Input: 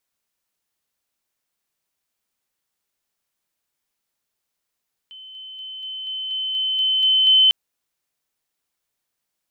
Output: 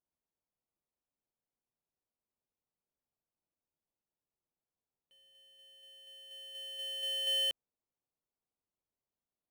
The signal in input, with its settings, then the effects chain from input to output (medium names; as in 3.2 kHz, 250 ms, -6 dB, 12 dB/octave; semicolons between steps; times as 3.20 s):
level ladder 3.06 kHz -37.5 dBFS, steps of 3 dB, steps 10, 0.24 s 0.00 s
median filter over 25 samples; treble shelf 2.4 kHz -9.5 dB; upward expansion 1.5:1, over -46 dBFS